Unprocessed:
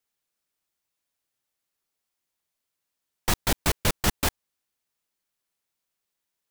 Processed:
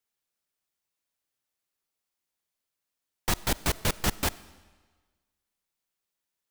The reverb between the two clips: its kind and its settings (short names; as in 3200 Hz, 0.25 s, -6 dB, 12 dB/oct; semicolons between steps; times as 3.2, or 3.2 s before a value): digital reverb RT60 1.4 s, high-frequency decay 0.95×, pre-delay 15 ms, DRR 18.5 dB; gain -3 dB